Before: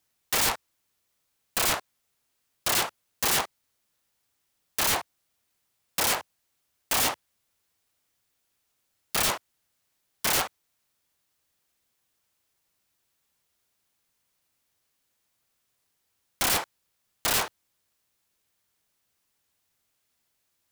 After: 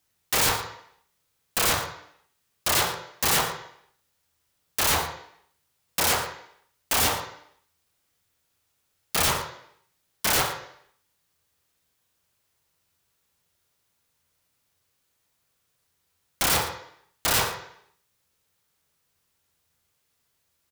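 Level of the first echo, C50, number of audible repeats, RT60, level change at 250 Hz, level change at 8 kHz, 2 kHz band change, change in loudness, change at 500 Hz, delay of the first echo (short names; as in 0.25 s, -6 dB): -11.5 dB, 6.0 dB, 2, 0.65 s, +3.0 dB, +2.0 dB, +3.0 dB, +2.0 dB, +3.5 dB, 67 ms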